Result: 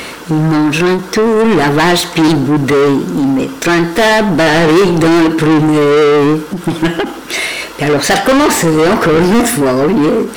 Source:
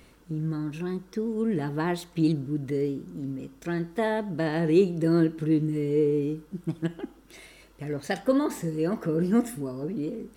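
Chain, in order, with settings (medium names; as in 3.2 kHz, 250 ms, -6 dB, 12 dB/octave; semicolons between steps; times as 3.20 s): overdrive pedal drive 33 dB, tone 6 kHz, clips at -10.5 dBFS; endings held to a fixed fall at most 150 dB/s; trim +8.5 dB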